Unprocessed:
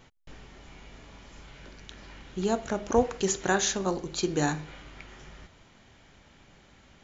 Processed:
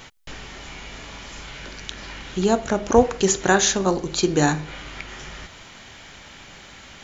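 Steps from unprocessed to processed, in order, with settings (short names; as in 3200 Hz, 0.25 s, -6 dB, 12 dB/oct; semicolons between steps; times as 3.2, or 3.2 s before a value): mismatched tape noise reduction encoder only; gain +8 dB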